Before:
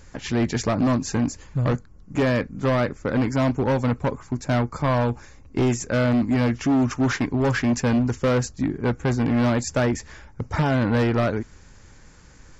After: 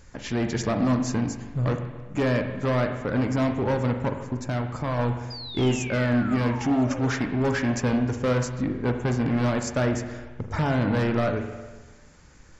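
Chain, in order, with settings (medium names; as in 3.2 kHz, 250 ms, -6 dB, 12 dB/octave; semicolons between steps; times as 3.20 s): 4.37–4.99 s: compression 3:1, threshold -23 dBFS, peak gain reduction 4 dB; 5.30–7.11 s: painted sound fall 430–5000 Hz -35 dBFS; on a send: reverberation RT60 1.3 s, pre-delay 39 ms, DRR 5.5 dB; on the sum: trim -3.5 dB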